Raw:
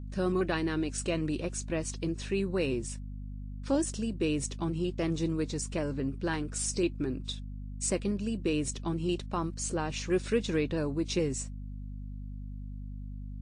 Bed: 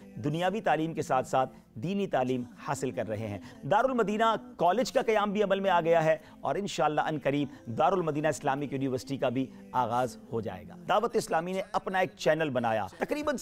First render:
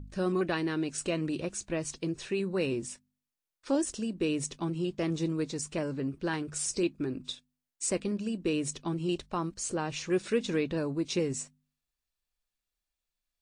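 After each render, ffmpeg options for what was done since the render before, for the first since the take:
ffmpeg -i in.wav -af "bandreject=frequency=50:width_type=h:width=4,bandreject=frequency=100:width_type=h:width=4,bandreject=frequency=150:width_type=h:width=4,bandreject=frequency=200:width_type=h:width=4,bandreject=frequency=250:width_type=h:width=4" out.wav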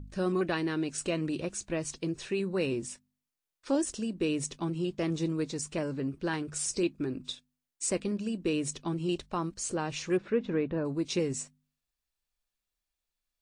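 ffmpeg -i in.wav -filter_complex "[0:a]asplit=3[link_01][link_02][link_03];[link_01]afade=type=out:start_time=10.16:duration=0.02[link_04];[link_02]lowpass=1700,afade=type=in:start_time=10.16:duration=0.02,afade=type=out:start_time=10.84:duration=0.02[link_05];[link_03]afade=type=in:start_time=10.84:duration=0.02[link_06];[link_04][link_05][link_06]amix=inputs=3:normalize=0" out.wav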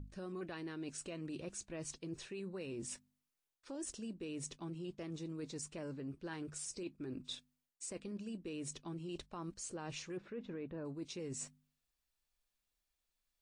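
ffmpeg -i in.wav -af "alimiter=level_in=0.5dB:limit=-24dB:level=0:latency=1:release=73,volume=-0.5dB,areverse,acompressor=threshold=-43dB:ratio=5,areverse" out.wav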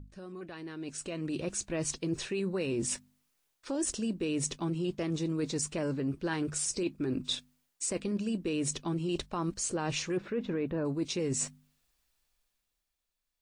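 ffmpeg -i in.wav -af "dynaudnorm=framelen=110:gausssize=21:maxgain=12dB" out.wav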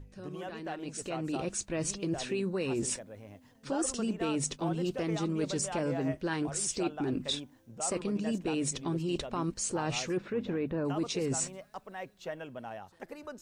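ffmpeg -i in.wav -i bed.wav -filter_complex "[1:a]volume=-14dB[link_01];[0:a][link_01]amix=inputs=2:normalize=0" out.wav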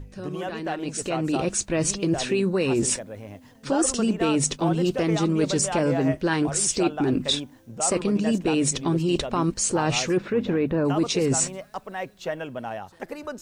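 ffmpeg -i in.wav -af "volume=9.5dB" out.wav

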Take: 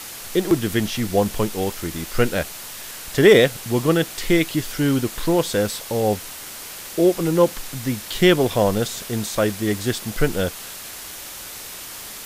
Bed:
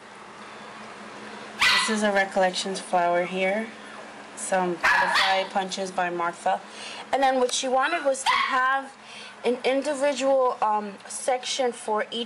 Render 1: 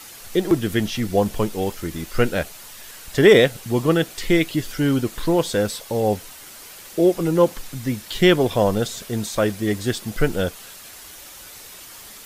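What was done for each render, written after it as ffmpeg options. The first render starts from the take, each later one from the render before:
ffmpeg -i in.wav -af "afftdn=noise_reduction=7:noise_floor=-36" out.wav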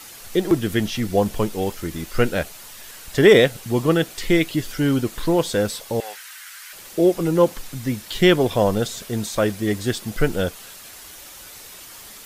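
ffmpeg -i in.wav -filter_complex "[0:a]asettb=1/sr,asplit=3[link_01][link_02][link_03];[link_01]atrim=end=6.004[link_04];[link_02]atrim=start=6:end=6.73,asetpts=PTS-STARTPTS,afade=type=in:duration=0.004:curve=qsin,afade=type=out:start_time=0.726:duration=0.004:curve=qsin,highpass=frequency=1600:width_type=q:width=2.6[link_05];[link_03]atrim=start=6.726[link_06];[link_04][link_05]acrossfade=duration=0.004:curve1=hsin:curve2=qsin[link_07];[link_07][link_06]acrossfade=duration=0.004:curve1=qsin:curve2=hsin" out.wav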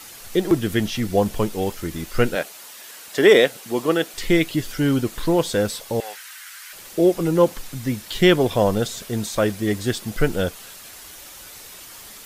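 ffmpeg -i in.wav -filter_complex "[0:a]asettb=1/sr,asplit=3[link_01][link_02][link_03];[link_01]atrim=end=2.354[link_04];[link_02]atrim=start=2.35:end=4.14,asetpts=PTS-STARTPTS,afade=type=in:duration=0.004:curve=qsin,afade=type=out:start_time=1.786:duration=0.004:curve=qsin,highpass=280[link_05];[link_03]atrim=start=4.136[link_06];[link_04][link_05]acrossfade=duration=0.004:curve1=hsin:curve2=qsin[link_07];[link_07][link_06]acrossfade=duration=0.004:curve1=qsin:curve2=hsin" out.wav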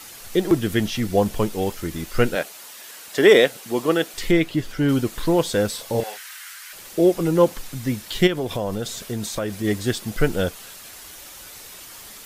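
ffmpeg -i in.wav -filter_complex "[0:a]asettb=1/sr,asplit=3[link_01][link_02][link_03];[link_01]atrim=end=4.314[link_04];[link_02]atrim=start=4.31:end=4.89,asetpts=PTS-STARTPTS,afade=type=in:duration=0.004:curve=qsin,afade=type=out:start_time=0.576:duration=0.004:curve=qsin,highshelf=frequency=4200:gain=-9.5[link_05];[link_03]atrim=start=4.886[link_06];[link_04][link_05]acrossfade=duration=0.004:curve1=hsin:curve2=qsin[link_07];[link_07][link_06]acrossfade=duration=0.004:curve1=qsin:curve2=hsin,asettb=1/sr,asplit=3[link_08][link_09][link_10];[link_08]atrim=end=5.754[link_11];[link_09]atrim=start=5.75:end=6.54,asetpts=PTS-STARTPTS,afade=type=in:duration=0.004:curve=qsin,afade=type=out:start_time=0.786:duration=0.004:curve=qsin,asplit=2[link_12][link_13];[link_13]adelay=33,volume=-6dB[link_14];[link_12][link_14]amix=inputs=2:normalize=0,atrim=end_sample=34839[link_15];[link_10]atrim=start=6.536[link_16];[link_11][link_15]acrossfade=duration=0.004:curve1=hsin:curve2=qsin[link_17];[link_17][link_16]acrossfade=duration=0.004:curve1=qsin:curve2=hsin,asplit=3[link_18][link_19][link_20];[link_18]afade=type=out:start_time=8.26:duration=0.02[link_21];[link_19]acompressor=threshold=-22dB:ratio=4:attack=3.2:release=140:knee=1:detection=peak,afade=type=in:start_time=8.26:duration=0.02,afade=type=out:start_time=9.63:duration=0.02[link_22];[link_20]afade=type=in:start_time=9.63:duration=0.02[link_23];[link_21][link_22][link_23]amix=inputs=3:normalize=0" out.wav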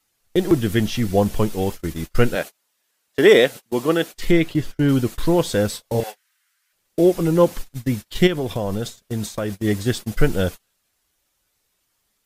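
ffmpeg -i in.wav -af "agate=range=-30dB:threshold=-29dB:ratio=16:detection=peak,lowshelf=frequency=170:gain=6" out.wav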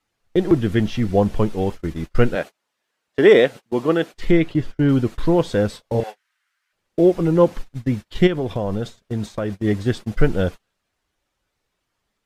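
ffmpeg -i in.wav -af "aemphasis=mode=reproduction:type=75fm" out.wav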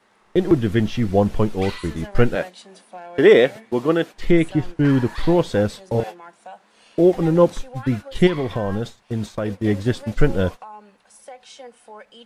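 ffmpeg -i in.wav -i bed.wav -filter_complex "[1:a]volume=-15.5dB[link_01];[0:a][link_01]amix=inputs=2:normalize=0" out.wav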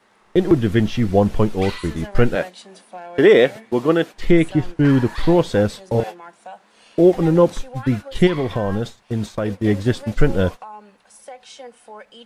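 ffmpeg -i in.wav -af "volume=2dB,alimiter=limit=-3dB:level=0:latency=1" out.wav

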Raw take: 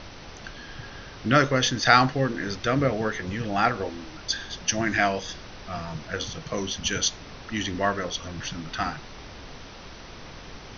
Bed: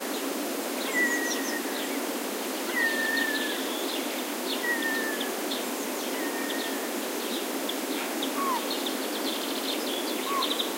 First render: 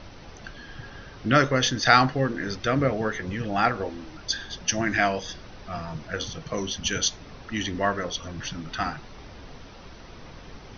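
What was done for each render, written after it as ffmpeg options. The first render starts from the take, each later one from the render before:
ffmpeg -i in.wav -af "afftdn=noise_reduction=6:noise_floor=-43" out.wav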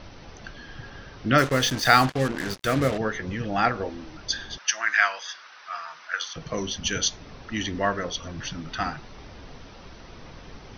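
ffmpeg -i in.wav -filter_complex "[0:a]asettb=1/sr,asplit=3[link_01][link_02][link_03];[link_01]atrim=end=1.384[link_04];[link_02]atrim=start=1.38:end=2.98,asetpts=PTS-STARTPTS,afade=type=in:duration=0.004:curve=qsin,afade=type=out:start_time=1.596:duration=0.004:curve=qsin,acrusher=bits=4:mix=0:aa=0.5[link_05];[link_03]atrim=start=2.976[link_06];[link_04][link_05]acrossfade=duration=0.004:curve1=hsin:curve2=qsin[link_07];[link_07][link_06]acrossfade=duration=0.004:curve1=qsin:curve2=hsin,asettb=1/sr,asplit=3[link_08][link_09][link_10];[link_08]atrim=end=4.584[link_11];[link_09]atrim=start=4.58:end=6.36,asetpts=PTS-STARTPTS,afade=type=in:duration=0.004:curve=qsin,afade=type=out:start_time=1.776:duration=0.004:curve=qsin,highpass=frequency=1300:width_type=q:width=2[link_12];[link_10]atrim=start=6.356[link_13];[link_11][link_12]acrossfade=duration=0.004:curve1=hsin:curve2=qsin[link_14];[link_14][link_13]acrossfade=duration=0.004:curve1=qsin:curve2=hsin" out.wav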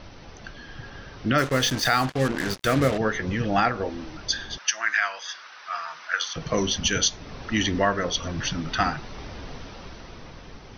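ffmpeg -i in.wav -af "dynaudnorm=framelen=240:gausssize=9:maxgain=6dB,alimiter=limit=-10dB:level=0:latency=1:release=372" out.wav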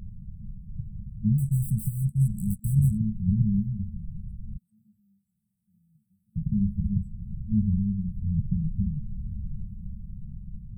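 ffmpeg -i in.wav -af "afftfilt=real='re*(1-between(b*sr/4096,220,7700))':imag='im*(1-between(b*sr/4096,220,7700))':win_size=4096:overlap=0.75,lowshelf=frequency=390:gain=7" out.wav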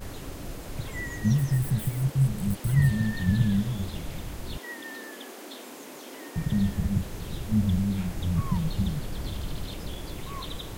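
ffmpeg -i in.wav -i bed.wav -filter_complex "[1:a]volume=-11.5dB[link_01];[0:a][link_01]amix=inputs=2:normalize=0" out.wav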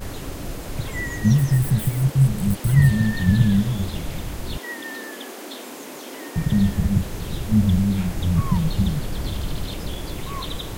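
ffmpeg -i in.wav -af "volume=6.5dB" out.wav

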